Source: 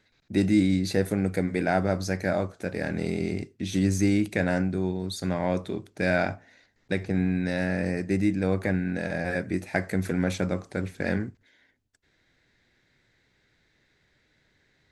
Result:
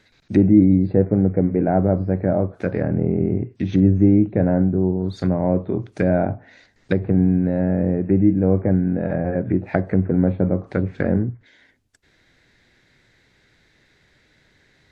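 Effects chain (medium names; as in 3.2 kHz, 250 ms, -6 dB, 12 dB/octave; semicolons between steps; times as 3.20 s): dynamic bell 120 Hz, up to +8 dB, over -53 dBFS, Q 6.9; low-pass that closes with the level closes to 630 Hz, closed at -24.5 dBFS; trim +8.5 dB; WMA 128 kbps 32 kHz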